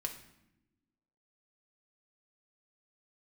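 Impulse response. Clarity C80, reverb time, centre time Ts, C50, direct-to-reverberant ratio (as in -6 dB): 12.5 dB, no single decay rate, 16 ms, 9.5 dB, 2.0 dB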